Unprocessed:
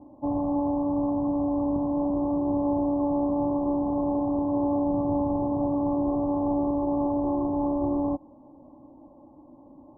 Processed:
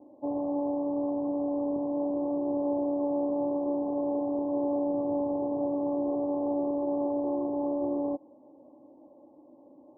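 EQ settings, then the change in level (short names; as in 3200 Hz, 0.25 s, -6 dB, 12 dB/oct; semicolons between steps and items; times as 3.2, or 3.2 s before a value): band-pass 470 Hz, Q 1.8; +1.5 dB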